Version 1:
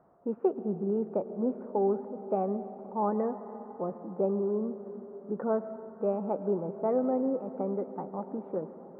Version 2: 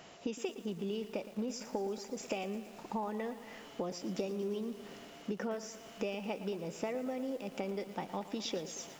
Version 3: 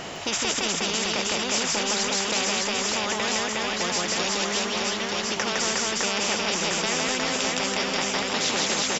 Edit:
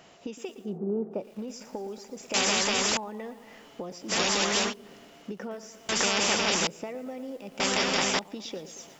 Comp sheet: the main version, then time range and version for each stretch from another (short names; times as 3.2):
2
0.68–1.22 from 1, crossfade 0.24 s
2.34–2.97 from 3
4.11–4.71 from 3, crossfade 0.06 s
5.89–6.67 from 3
7.6–8.19 from 3